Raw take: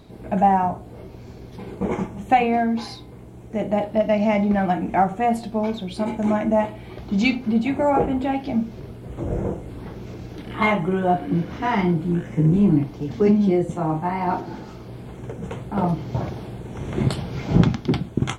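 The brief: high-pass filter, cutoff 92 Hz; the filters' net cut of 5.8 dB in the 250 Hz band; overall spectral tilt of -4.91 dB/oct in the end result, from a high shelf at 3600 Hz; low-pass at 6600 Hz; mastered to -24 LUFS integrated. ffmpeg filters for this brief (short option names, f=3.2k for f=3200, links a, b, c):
-af "highpass=92,lowpass=6.6k,equalizer=f=250:t=o:g=-8,highshelf=f=3.6k:g=8,volume=0.5dB"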